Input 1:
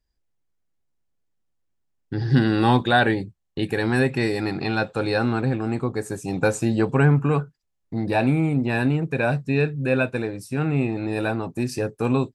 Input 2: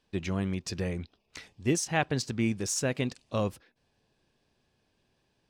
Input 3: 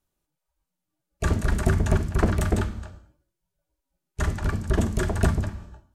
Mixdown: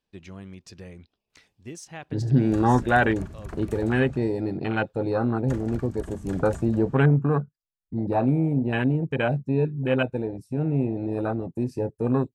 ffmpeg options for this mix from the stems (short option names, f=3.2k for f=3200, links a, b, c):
-filter_complex "[0:a]afwtdn=0.0631,volume=-1.5dB[a];[1:a]volume=-10dB[b];[2:a]adelay=1300,volume=-7.5dB[c];[b][c]amix=inputs=2:normalize=0,acompressor=threshold=-34dB:ratio=5,volume=0dB[d];[a][d]amix=inputs=2:normalize=0"